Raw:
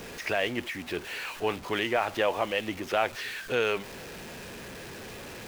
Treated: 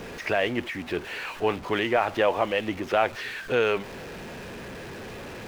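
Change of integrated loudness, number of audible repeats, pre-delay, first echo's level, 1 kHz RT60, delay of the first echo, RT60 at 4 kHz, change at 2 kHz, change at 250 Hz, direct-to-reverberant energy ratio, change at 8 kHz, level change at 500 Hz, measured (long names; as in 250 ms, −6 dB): +3.5 dB, no echo audible, no reverb audible, no echo audible, no reverb audible, no echo audible, no reverb audible, +2.0 dB, +4.5 dB, no reverb audible, can't be measured, +4.5 dB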